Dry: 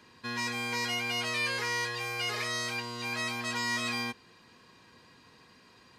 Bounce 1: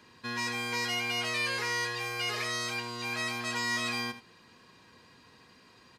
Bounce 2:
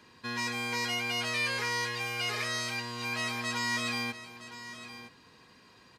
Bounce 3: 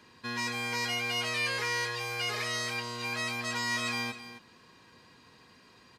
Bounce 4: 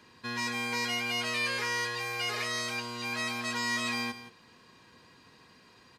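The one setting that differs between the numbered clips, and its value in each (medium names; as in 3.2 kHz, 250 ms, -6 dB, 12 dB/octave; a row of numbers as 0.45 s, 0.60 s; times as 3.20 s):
delay, time: 81 ms, 963 ms, 266 ms, 171 ms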